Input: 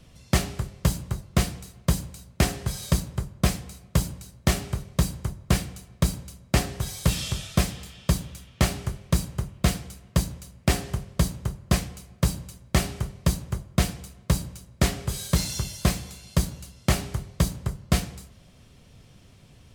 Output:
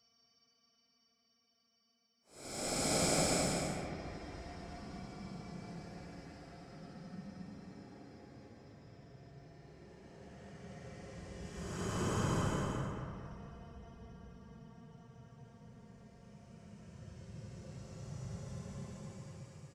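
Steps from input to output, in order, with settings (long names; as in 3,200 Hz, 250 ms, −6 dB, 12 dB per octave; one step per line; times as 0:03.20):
high-pass filter 66 Hz 24 dB per octave
treble cut that deepens with the level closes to 1,900 Hz, closed at −23.5 dBFS
noise gate −43 dBFS, range −40 dB
high shelf with overshoot 4,900 Hz +10.5 dB, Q 1.5
comb filter 6 ms, depth 34%
dynamic equaliser 200 Hz, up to +4 dB, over −31 dBFS, Q 1.7
reversed playback
downward compressor 10 to 1, threshold −27 dBFS, peak gain reduction 15.5 dB
reversed playback
gate with flip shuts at −26 dBFS, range −29 dB
hum removal 230.3 Hz, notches 26
extreme stretch with random phases 35×, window 0.05 s, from 0:10.59
on a send: bucket-brigade delay 225 ms, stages 4,096, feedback 44%, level −4 dB
on the sum: level +8.5 dB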